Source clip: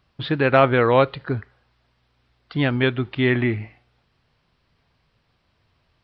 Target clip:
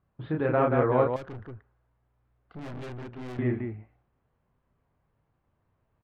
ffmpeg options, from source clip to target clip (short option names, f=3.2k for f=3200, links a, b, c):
-filter_complex "[0:a]lowpass=1.2k,aecho=1:1:32.07|180.8:0.708|0.631,asettb=1/sr,asplit=3[a][b][c];[a]atrim=end=1.164[d];[b]atrim=start=1.16:end=3.39,asetpts=PTS-STARTPTS,afade=t=in:d=0.004:c=qsin,afade=t=out:st=2.226:d=0.004:c=qsin,aeval=exprs='(tanh(28.2*val(0)+0.4)-tanh(0.4))/28.2':c=same[e];[c]atrim=start=3.386[f];[d][e]acrossfade=d=0.004:c1=hsin:c2=qsin[g];[g][f]acrossfade=d=0.004:c1=qsin:c2=hsin,volume=-8.5dB"